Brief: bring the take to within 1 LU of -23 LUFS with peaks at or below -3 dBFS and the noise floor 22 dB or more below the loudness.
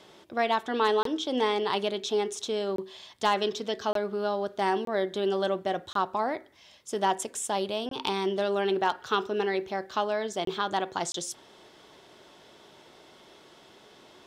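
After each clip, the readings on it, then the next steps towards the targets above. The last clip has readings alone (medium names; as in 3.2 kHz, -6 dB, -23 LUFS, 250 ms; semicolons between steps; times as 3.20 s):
dropouts 8; longest dropout 23 ms; loudness -29.0 LUFS; peak level -14.5 dBFS; loudness target -23.0 LUFS
-> interpolate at 1.03/2.76/3.93/4.85/5.93/7.89/10.45/11.12 s, 23 ms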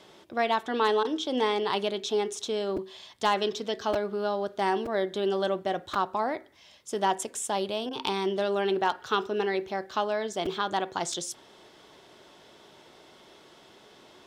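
dropouts 0; loudness -29.0 LUFS; peak level -14.5 dBFS; loudness target -23.0 LUFS
-> trim +6 dB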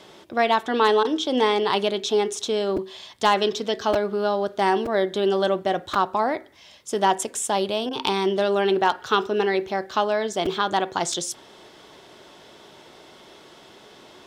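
loudness -23.0 LUFS; peak level -8.5 dBFS; noise floor -49 dBFS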